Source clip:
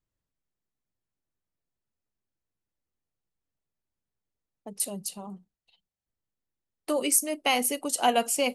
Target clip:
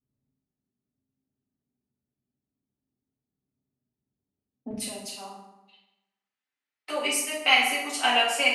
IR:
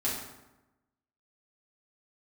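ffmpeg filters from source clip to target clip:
-filter_complex "[0:a]asetnsamples=n=441:p=0,asendcmd='4.71 bandpass f 2200',bandpass=f=200:t=q:w=1.4:csg=0[s0];[1:a]atrim=start_sample=2205[s1];[s0][s1]afir=irnorm=-1:irlink=0,volume=1.78"

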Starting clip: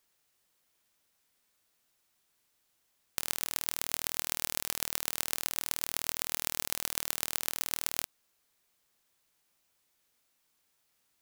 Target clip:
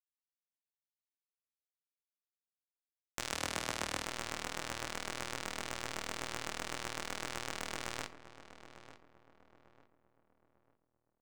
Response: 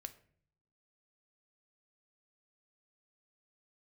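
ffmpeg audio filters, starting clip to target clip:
-filter_complex "[0:a]lowpass=f=8700:w=0.5412,lowpass=f=8700:w=1.3066,tiltshelf=f=970:g=5,asplit=2[s0][s1];[s1]acompressor=threshold=0.00251:ratio=6,volume=0.891[s2];[s0][s2]amix=inputs=2:normalize=0,aeval=exprs='val(0)*gte(abs(val(0)),0.0562)':c=same,flanger=delay=16.5:depth=4.8:speed=1.9,asettb=1/sr,asplit=3[s3][s4][s5];[s3]atrim=end=3.324[s6];[s4]atrim=start=3.32:end=4.04,asetpts=PTS-STARTPTS,afade=t=in:d=0.004:c=qsin,afade=t=out:st=0.716:d=0.004:c=qsin,afreqshift=41[s7];[s5]atrim=start=4.036[s8];[s6][s7]acrossfade=d=0.004:c1=hsin:c2=qsin[s9];[s9][s8]acrossfade=d=0.004:c1=qsin:c2=hsin,asoftclip=type=tanh:threshold=0.0596,asplit=2[s10][s11];[s11]adelay=897,lowpass=f=1300:p=1,volume=0.251,asplit=2[s12][s13];[s13]adelay=897,lowpass=f=1300:p=1,volume=0.41,asplit=2[s14][s15];[s15]adelay=897,lowpass=f=1300:p=1,volume=0.41,asplit=2[s16][s17];[s17]adelay=897,lowpass=f=1300:p=1,volume=0.41[s18];[s10][s12][s14][s16][s18]amix=inputs=5:normalize=0,asplit=2[s19][s20];[1:a]atrim=start_sample=2205[s21];[s20][s21]afir=irnorm=-1:irlink=0,volume=3.76[s22];[s19][s22]amix=inputs=2:normalize=0,adynamicequalizer=threshold=0.00316:dfrequency=2700:dqfactor=0.7:tfrequency=2700:tqfactor=0.7:attack=5:release=100:ratio=0.375:range=2.5:mode=cutabove:tftype=highshelf,volume=0.841"

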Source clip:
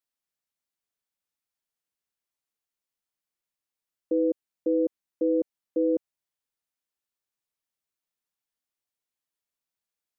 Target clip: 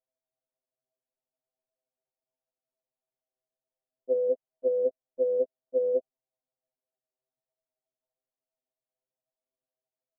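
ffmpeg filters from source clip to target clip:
-af "lowpass=f=640:t=q:w=5.9,afftfilt=real='re*2.45*eq(mod(b,6),0)':imag='im*2.45*eq(mod(b,6),0)':win_size=2048:overlap=0.75"

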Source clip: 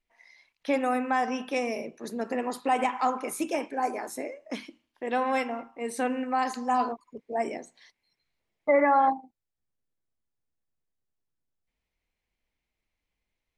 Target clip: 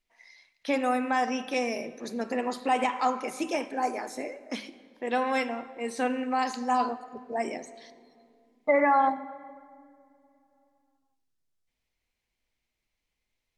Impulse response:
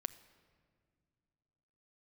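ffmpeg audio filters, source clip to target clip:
-filter_complex "[0:a]acrossover=split=6000[s0][s1];[s1]acompressor=threshold=0.00282:ratio=4:attack=1:release=60[s2];[s0][s2]amix=inputs=2:normalize=0,equalizer=f=5400:w=0.61:g=5.5[s3];[1:a]atrim=start_sample=2205,asetrate=35721,aresample=44100[s4];[s3][s4]afir=irnorm=-1:irlink=0"

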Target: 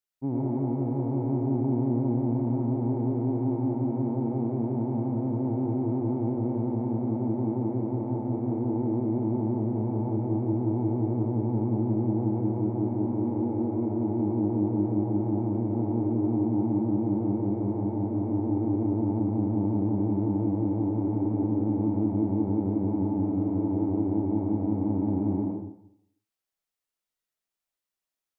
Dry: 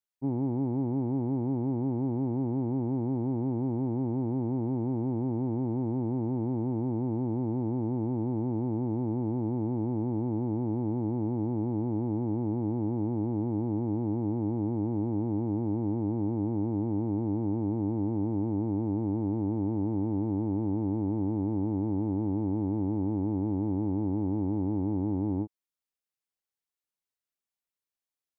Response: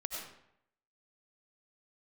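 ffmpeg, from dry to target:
-filter_complex "[1:a]atrim=start_sample=2205[s0];[0:a][s0]afir=irnorm=-1:irlink=0,volume=1.33"

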